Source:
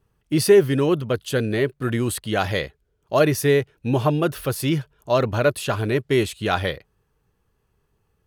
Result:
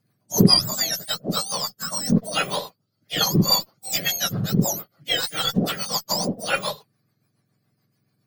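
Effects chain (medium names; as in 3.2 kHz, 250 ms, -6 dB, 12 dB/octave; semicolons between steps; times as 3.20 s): spectrum inverted on a logarithmic axis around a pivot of 1.4 kHz; Chebyshev shaper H 8 -31 dB, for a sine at -3 dBFS; rotary cabinet horn 7 Hz; trim +4 dB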